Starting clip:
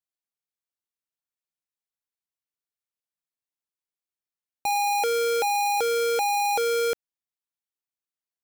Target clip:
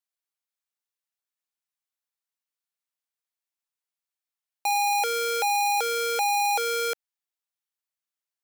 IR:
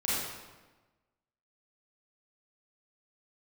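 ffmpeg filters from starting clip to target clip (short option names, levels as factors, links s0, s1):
-af "highpass=660,volume=1.19"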